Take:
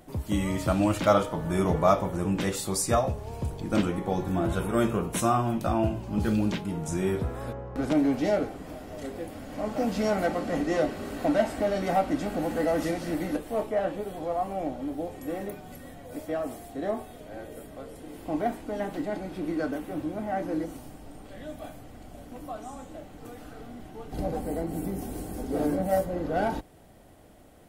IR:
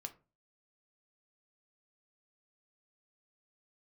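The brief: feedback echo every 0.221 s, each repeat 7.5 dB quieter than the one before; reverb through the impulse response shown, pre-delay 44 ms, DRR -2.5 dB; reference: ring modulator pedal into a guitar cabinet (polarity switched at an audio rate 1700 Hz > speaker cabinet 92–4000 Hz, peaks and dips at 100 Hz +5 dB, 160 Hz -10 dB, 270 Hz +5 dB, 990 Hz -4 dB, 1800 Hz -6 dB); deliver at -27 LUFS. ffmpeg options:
-filter_complex "[0:a]aecho=1:1:221|442|663|884|1105:0.422|0.177|0.0744|0.0312|0.0131,asplit=2[a][b];[1:a]atrim=start_sample=2205,adelay=44[c];[b][c]afir=irnorm=-1:irlink=0,volume=6.5dB[d];[a][d]amix=inputs=2:normalize=0,aeval=exprs='val(0)*sgn(sin(2*PI*1700*n/s))':c=same,highpass=92,equalizer=f=100:t=q:w=4:g=5,equalizer=f=160:t=q:w=4:g=-10,equalizer=f=270:t=q:w=4:g=5,equalizer=f=990:t=q:w=4:g=-4,equalizer=f=1.8k:t=q:w=4:g=-6,lowpass=f=4k:w=0.5412,lowpass=f=4k:w=1.3066,volume=-2.5dB"

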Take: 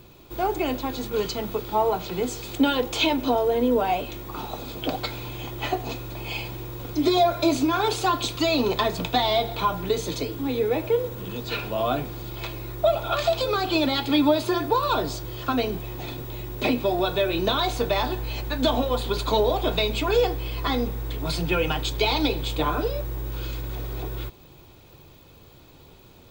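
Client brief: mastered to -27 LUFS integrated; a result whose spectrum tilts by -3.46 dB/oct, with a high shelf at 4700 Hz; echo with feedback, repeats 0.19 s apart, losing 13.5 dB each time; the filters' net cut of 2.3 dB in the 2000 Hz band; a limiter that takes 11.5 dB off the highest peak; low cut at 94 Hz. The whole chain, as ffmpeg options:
-af "highpass=94,equalizer=f=2k:t=o:g=-5,highshelf=f=4.7k:g=7.5,alimiter=limit=-19.5dB:level=0:latency=1,aecho=1:1:190|380:0.211|0.0444,volume=1dB"

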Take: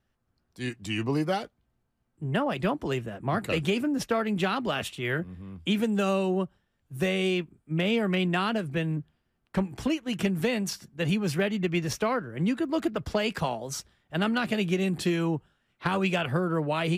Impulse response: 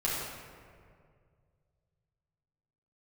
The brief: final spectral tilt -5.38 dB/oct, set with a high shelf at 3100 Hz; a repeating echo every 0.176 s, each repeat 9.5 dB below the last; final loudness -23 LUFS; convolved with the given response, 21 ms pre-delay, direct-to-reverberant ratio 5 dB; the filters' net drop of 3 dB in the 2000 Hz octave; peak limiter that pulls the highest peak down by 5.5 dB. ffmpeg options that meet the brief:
-filter_complex "[0:a]equalizer=f=2k:t=o:g=-6.5,highshelf=f=3.1k:g=5.5,alimiter=limit=-21dB:level=0:latency=1,aecho=1:1:176|352|528|704:0.335|0.111|0.0365|0.012,asplit=2[a][b];[1:a]atrim=start_sample=2205,adelay=21[c];[b][c]afir=irnorm=-1:irlink=0,volume=-13.5dB[d];[a][d]amix=inputs=2:normalize=0,volume=6.5dB"

